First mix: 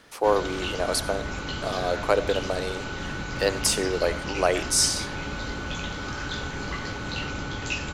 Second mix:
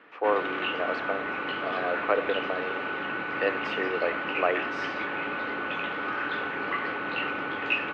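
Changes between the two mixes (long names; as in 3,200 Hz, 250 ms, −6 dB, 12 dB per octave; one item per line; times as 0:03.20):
speech −6.5 dB
master: add loudspeaker in its box 300–2,800 Hz, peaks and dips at 310 Hz +4 dB, 470 Hz +4 dB, 710 Hz +3 dB, 1,200 Hz +7 dB, 1,800 Hz +6 dB, 2,600 Hz +6 dB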